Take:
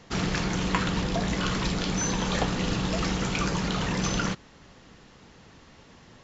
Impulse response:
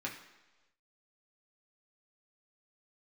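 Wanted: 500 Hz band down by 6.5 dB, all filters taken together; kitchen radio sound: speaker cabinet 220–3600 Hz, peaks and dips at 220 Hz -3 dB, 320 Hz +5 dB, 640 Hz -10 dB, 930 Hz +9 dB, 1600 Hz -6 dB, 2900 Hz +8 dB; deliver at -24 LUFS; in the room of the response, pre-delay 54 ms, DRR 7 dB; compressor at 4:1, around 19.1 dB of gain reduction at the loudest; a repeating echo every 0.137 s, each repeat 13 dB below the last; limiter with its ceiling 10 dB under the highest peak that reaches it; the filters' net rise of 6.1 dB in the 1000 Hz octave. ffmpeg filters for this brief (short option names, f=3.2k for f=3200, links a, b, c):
-filter_complex "[0:a]equalizer=f=500:t=o:g=-8,equalizer=f=1k:t=o:g=5,acompressor=threshold=-44dB:ratio=4,alimiter=level_in=12dB:limit=-24dB:level=0:latency=1,volume=-12dB,aecho=1:1:137|274|411:0.224|0.0493|0.0108,asplit=2[a][b];[1:a]atrim=start_sample=2205,adelay=54[c];[b][c]afir=irnorm=-1:irlink=0,volume=-9dB[d];[a][d]amix=inputs=2:normalize=0,highpass=220,equalizer=f=220:t=q:w=4:g=-3,equalizer=f=320:t=q:w=4:g=5,equalizer=f=640:t=q:w=4:g=-10,equalizer=f=930:t=q:w=4:g=9,equalizer=f=1.6k:t=q:w=4:g=-6,equalizer=f=2.9k:t=q:w=4:g=8,lowpass=f=3.6k:w=0.5412,lowpass=f=3.6k:w=1.3066,volume=22dB"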